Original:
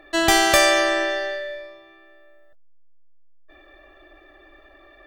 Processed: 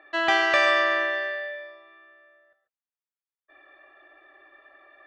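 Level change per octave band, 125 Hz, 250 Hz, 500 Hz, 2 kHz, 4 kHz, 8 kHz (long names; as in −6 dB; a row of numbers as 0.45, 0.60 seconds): can't be measured, −10.5 dB, −5.0 dB, −1.0 dB, −7.5 dB, below −20 dB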